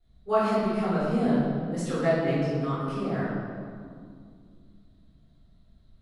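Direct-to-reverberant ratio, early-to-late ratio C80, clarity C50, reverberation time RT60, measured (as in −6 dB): −16.5 dB, −0.5 dB, −3.0 dB, 2.2 s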